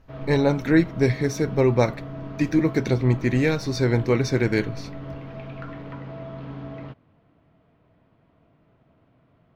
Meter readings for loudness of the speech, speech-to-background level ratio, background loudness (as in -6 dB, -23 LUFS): -22.0 LUFS, 15.0 dB, -37.0 LUFS